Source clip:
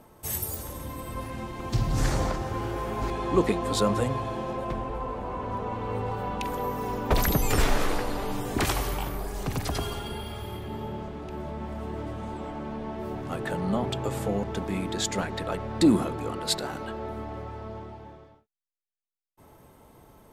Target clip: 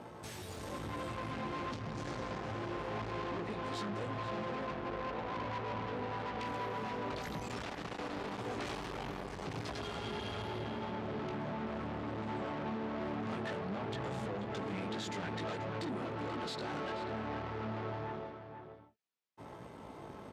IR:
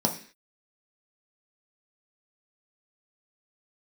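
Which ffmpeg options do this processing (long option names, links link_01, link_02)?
-filter_complex "[0:a]acompressor=threshold=-36dB:ratio=5,flanger=delay=17:depth=3.1:speed=0.92,aeval=exprs='(tanh(282*val(0)+0.7)-tanh(0.7))/282':channel_layout=same,highpass=100,lowpass=4800,asplit=2[link_01][link_02];[link_02]adelay=484,volume=-7dB,highshelf=frequency=4000:gain=-10.9[link_03];[link_01][link_03]amix=inputs=2:normalize=0,volume=12dB"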